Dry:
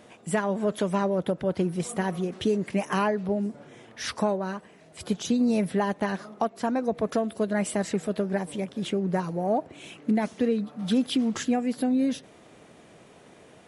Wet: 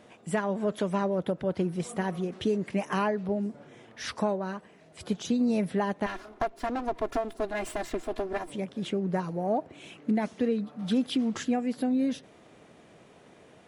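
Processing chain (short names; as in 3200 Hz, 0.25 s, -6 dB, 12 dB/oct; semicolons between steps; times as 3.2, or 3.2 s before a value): 6.06–8.5 minimum comb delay 2.9 ms; high shelf 7900 Hz -7 dB; gain -2.5 dB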